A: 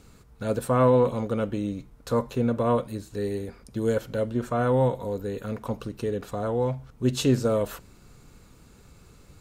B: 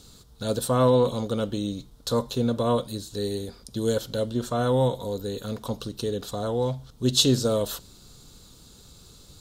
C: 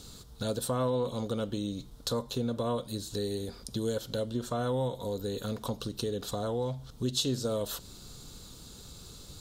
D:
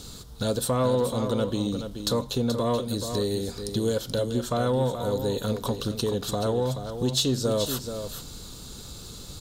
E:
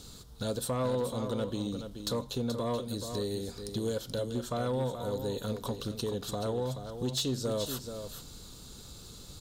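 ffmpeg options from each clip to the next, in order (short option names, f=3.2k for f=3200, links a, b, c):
-af "highshelf=f=2.9k:t=q:w=3:g=7.5"
-af "acompressor=threshold=-35dB:ratio=2.5,volume=2dB"
-af "asoftclip=type=tanh:threshold=-20dB,aecho=1:1:429:0.376,volume=6.5dB"
-af "asoftclip=type=hard:threshold=-18dB,volume=-7dB"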